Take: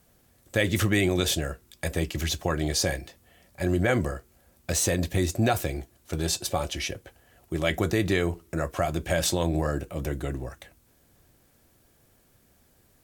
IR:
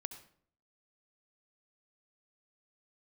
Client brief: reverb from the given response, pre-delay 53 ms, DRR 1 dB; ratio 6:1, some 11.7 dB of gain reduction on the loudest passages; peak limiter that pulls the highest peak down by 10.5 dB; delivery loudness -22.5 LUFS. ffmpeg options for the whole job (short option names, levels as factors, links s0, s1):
-filter_complex "[0:a]acompressor=threshold=0.0251:ratio=6,alimiter=level_in=1.5:limit=0.0631:level=0:latency=1,volume=0.668,asplit=2[s0][s1];[1:a]atrim=start_sample=2205,adelay=53[s2];[s1][s2]afir=irnorm=-1:irlink=0,volume=1.19[s3];[s0][s3]amix=inputs=2:normalize=0,volume=5.31"